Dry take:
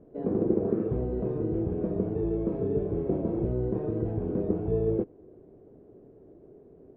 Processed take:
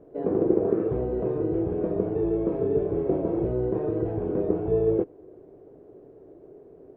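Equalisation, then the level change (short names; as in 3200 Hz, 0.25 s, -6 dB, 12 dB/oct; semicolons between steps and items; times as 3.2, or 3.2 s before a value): tone controls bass -5 dB, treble -5 dB; low shelf 150 Hz -3 dB; bell 220 Hz -8 dB 0.32 oct; +6.0 dB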